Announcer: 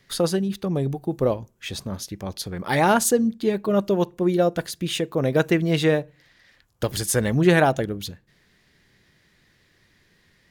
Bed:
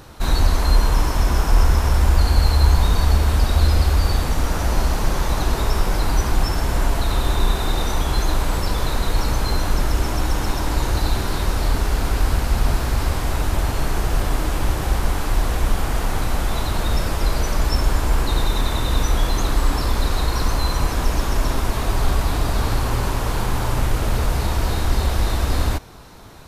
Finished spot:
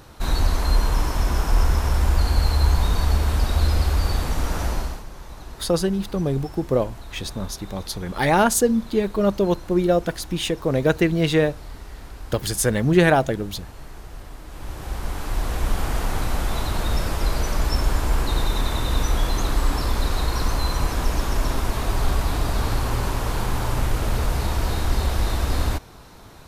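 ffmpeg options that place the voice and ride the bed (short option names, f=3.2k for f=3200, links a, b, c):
-filter_complex "[0:a]adelay=5500,volume=1dB[a];[1:a]volume=12.5dB,afade=t=out:st=4.64:d=0.4:silence=0.177828,afade=t=in:st=14.46:d=1.38:silence=0.158489[b];[a][b]amix=inputs=2:normalize=0"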